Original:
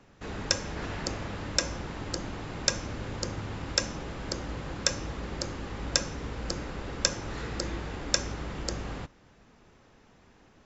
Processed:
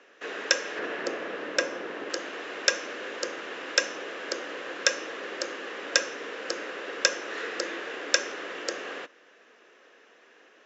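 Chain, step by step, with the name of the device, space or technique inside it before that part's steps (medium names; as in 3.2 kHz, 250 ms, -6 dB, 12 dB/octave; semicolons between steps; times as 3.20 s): phone speaker on a table (cabinet simulation 360–6600 Hz, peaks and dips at 480 Hz +3 dB, 860 Hz -8 dB, 1.7 kHz +7 dB, 2.8 kHz +5 dB, 4.6 kHz -5 dB); 0.79–2.10 s: tilt EQ -2.5 dB/octave; trim +4 dB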